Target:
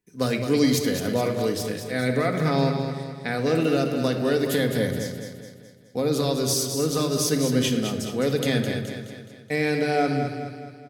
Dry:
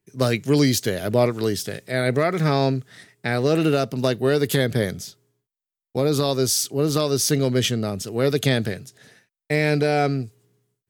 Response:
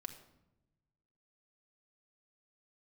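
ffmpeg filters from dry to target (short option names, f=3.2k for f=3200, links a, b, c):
-filter_complex "[0:a]aecho=1:1:211|422|633|844|1055|1266:0.422|0.207|0.101|0.0496|0.0243|0.0119[a];[1:a]atrim=start_sample=2205,afade=t=out:st=0.38:d=0.01,atrim=end_sample=17199[b];[a][b]afir=irnorm=-1:irlink=0"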